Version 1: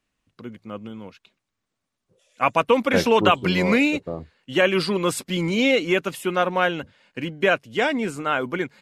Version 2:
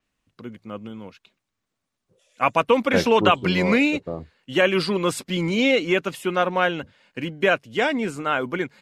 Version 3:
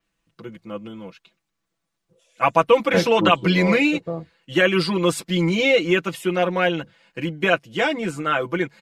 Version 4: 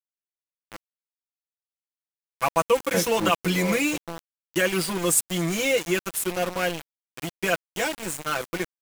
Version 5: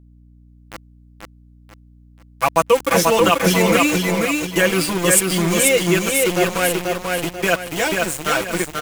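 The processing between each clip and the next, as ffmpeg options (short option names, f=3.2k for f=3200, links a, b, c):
-af "adynamicequalizer=threshold=0.00708:dfrequency=7800:dqfactor=0.7:tfrequency=7800:tqfactor=0.7:attack=5:release=100:ratio=0.375:range=3:mode=cutabove:tftype=highshelf"
-af "aecho=1:1:6:0.88,volume=-1dB"
-af "aexciter=amount=5:drive=8.9:freq=6.2k,aeval=exprs='val(0)*gte(abs(val(0)),0.0794)':c=same,volume=-5.5dB"
-filter_complex "[0:a]asplit=2[a][b];[b]aecho=0:1:487|974|1461|1948|2435:0.708|0.255|0.0917|0.033|0.0119[c];[a][c]amix=inputs=2:normalize=0,aeval=exprs='val(0)+0.00251*(sin(2*PI*60*n/s)+sin(2*PI*2*60*n/s)/2+sin(2*PI*3*60*n/s)/3+sin(2*PI*4*60*n/s)/4+sin(2*PI*5*60*n/s)/5)':c=same,volume=6dB"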